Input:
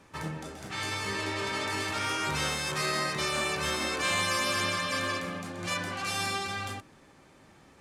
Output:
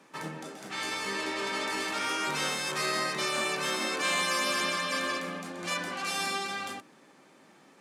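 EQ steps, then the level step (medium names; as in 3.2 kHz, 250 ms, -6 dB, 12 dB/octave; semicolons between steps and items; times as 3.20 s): high-pass 180 Hz 24 dB/octave; 0.0 dB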